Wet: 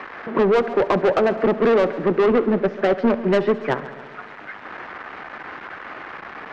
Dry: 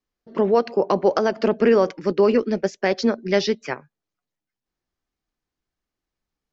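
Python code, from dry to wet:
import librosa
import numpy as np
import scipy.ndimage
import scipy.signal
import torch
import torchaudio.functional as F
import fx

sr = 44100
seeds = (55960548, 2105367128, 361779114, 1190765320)

p1 = x + 0.5 * 10.0 ** (-22.0 / 20.0) * np.diff(np.sign(x), prepend=np.sign(x[:1]))
p2 = scipy.signal.sosfilt(scipy.signal.butter(4, 1700.0, 'lowpass', fs=sr, output='sos'), p1)
p3 = fx.low_shelf(p2, sr, hz=75.0, db=-9.5)
p4 = fx.rider(p3, sr, range_db=4, speed_s=2.0)
p5 = p3 + (p4 * 10.0 ** (0.0 / 20.0))
p6 = 10.0 ** (-14.0 / 20.0) * np.tanh(p5 / 10.0 ** (-14.0 / 20.0))
p7 = fx.echo_heads(p6, sr, ms=69, heads='first and second', feedback_pct=59, wet_db=-19.5)
p8 = fx.band_squash(p7, sr, depth_pct=40)
y = p8 * 10.0 ** (1.5 / 20.0)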